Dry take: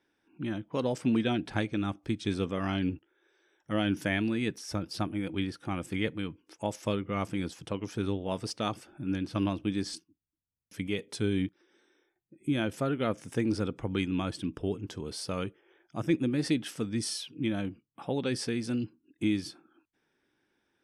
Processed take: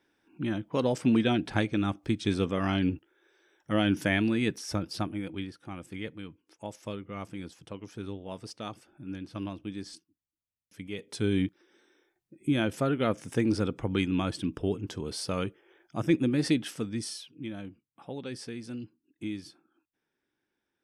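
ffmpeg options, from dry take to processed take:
-af "volume=4.22,afade=t=out:st=4.65:d=0.89:silence=0.316228,afade=t=in:st=10.89:d=0.45:silence=0.334965,afade=t=out:st=16.5:d=0.8:silence=0.316228"

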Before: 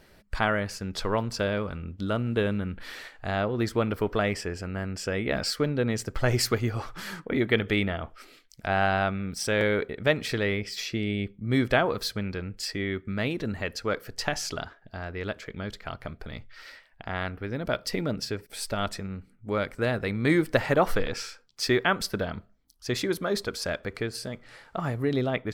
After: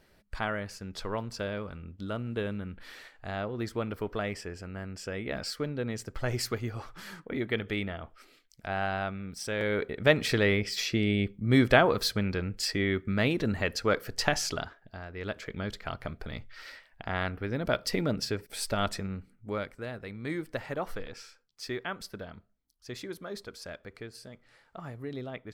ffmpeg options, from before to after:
-af "volume=2.99,afade=t=in:st=9.59:d=0.59:silence=0.354813,afade=t=out:st=14.31:d=0.78:silence=0.334965,afade=t=in:st=15.09:d=0.37:silence=0.421697,afade=t=out:st=19.08:d=0.75:silence=0.251189"

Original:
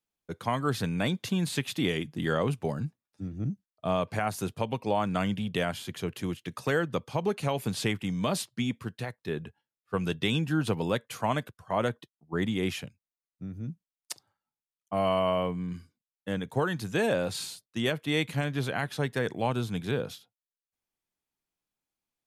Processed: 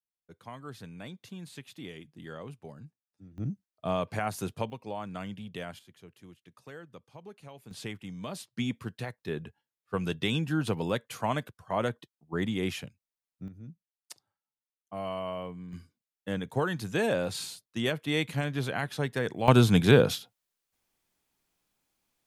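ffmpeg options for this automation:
-af "asetnsamples=n=441:p=0,asendcmd='3.38 volume volume -2dB;4.7 volume volume -10dB;5.79 volume volume -19dB;7.71 volume volume -10dB;8.57 volume volume -1.5dB;13.48 volume volume -9dB;15.73 volume volume -1dB;19.48 volume volume 11dB',volume=0.178"

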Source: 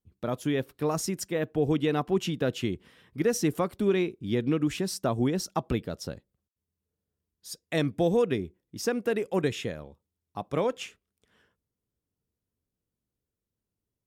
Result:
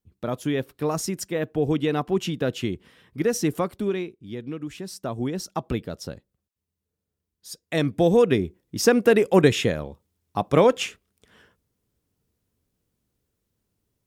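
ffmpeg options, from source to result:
-af "volume=10,afade=t=out:st=3.64:d=0.51:silence=0.334965,afade=t=in:st=4.7:d=1.06:silence=0.375837,afade=t=in:st=7.61:d=1.31:silence=0.354813"

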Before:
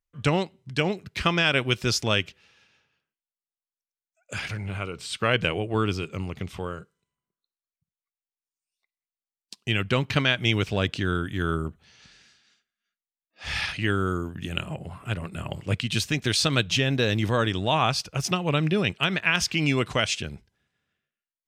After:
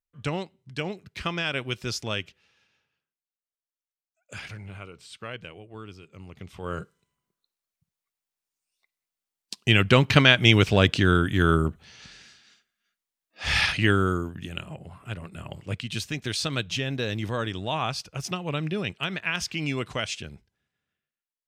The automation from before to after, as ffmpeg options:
-af "volume=6.68,afade=t=out:st=4.38:d=1.08:silence=0.298538,afade=t=in:st=6.08:d=0.54:silence=0.281838,afade=t=in:st=6.62:d=0.17:silence=0.251189,afade=t=out:st=13.63:d=0.91:silence=0.266073"

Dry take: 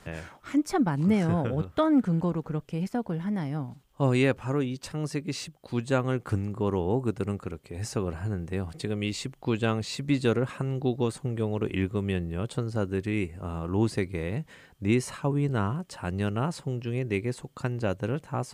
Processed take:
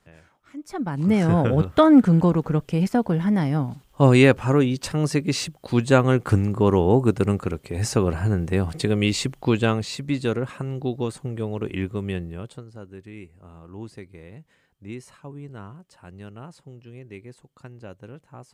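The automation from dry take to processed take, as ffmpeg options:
-af "volume=2.82,afade=t=in:st=0.57:d=0.25:silence=0.334965,afade=t=in:st=0.82:d=0.72:silence=0.237137,afade=t=out:st=9.25:d=0.81:silence=0.375837,afade=t=out:st=12.17:d=0.48:silence=0.237137"

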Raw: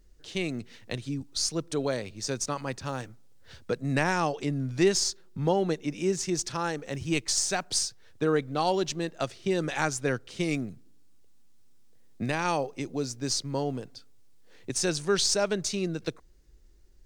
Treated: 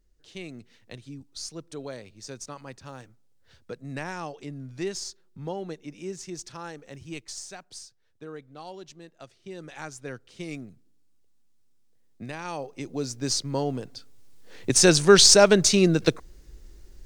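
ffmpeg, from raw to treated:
-af "volume=7.94,afade=t=out:st=6.85:d=0.89:silence=0.446684,afade=t=in:st=9.25:d=1.27:silence=0.398107,afade=t=in:st=12.5:d=0.71:silence=0.316228,afade=t=in:st=13.78:d=1.13:silence=0.375837"

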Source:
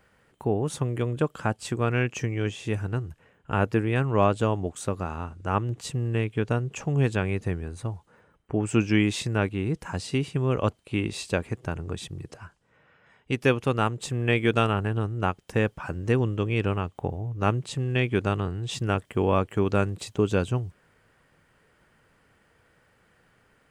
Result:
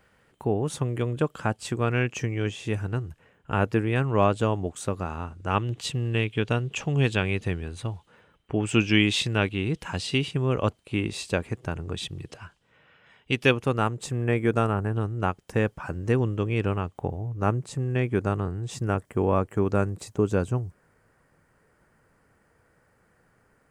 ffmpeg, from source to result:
-af "asetnsamples=n=441:p=0,asendcmd='5.5 equalizer g 10;10.31 equalizer g 1;11.95 equalizer g 8;13.51 equalizer g -4;14.24 equalizer g -13;14.93 equalizer g -3.5;17.4 equalizer g -11',equalizer=f=3200:t=o:w=1:g=1"

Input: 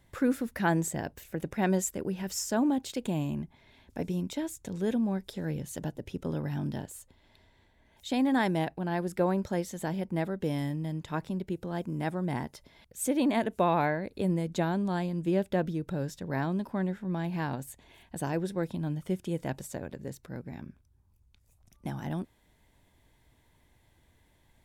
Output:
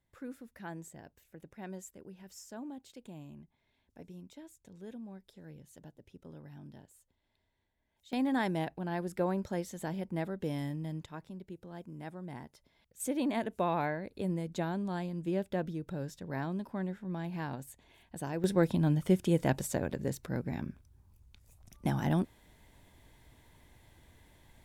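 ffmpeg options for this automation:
-af "asetnsamples=n=441:p=0,asendcmd='8.13 volume volume -4.5dB;11.06 volume volume -12dB;13 volume volume -5.5dB;18.44 volume volume 5dB',volume=0.141"

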